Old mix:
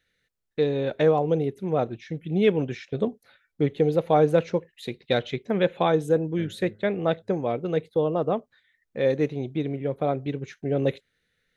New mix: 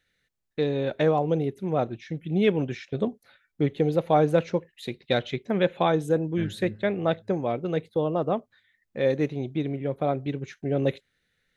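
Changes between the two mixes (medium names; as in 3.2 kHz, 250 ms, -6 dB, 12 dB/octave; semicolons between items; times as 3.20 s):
second voice: remove rippled Chebyshev low-pass 2 kHz, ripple 9 dB; master: add peaking EQ 460 Hz -4 dB 0.22 oct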